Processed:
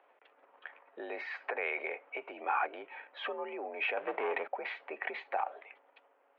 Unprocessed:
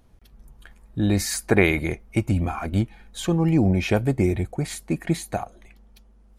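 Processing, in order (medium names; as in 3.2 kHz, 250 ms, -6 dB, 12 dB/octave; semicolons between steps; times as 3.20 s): 3.97–4.48 s: waveshaping leveller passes 3; compression 3:1, threshold -28 dBFS, peak gain reduction 12.5 dB; peak limiter -22 dBFS, peak gain reduction 8.5 dB; transient shaper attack 0 dB, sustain +7 dB; mistuned SSB +58 Hz 450–2700 Hz; trim +2.5 dB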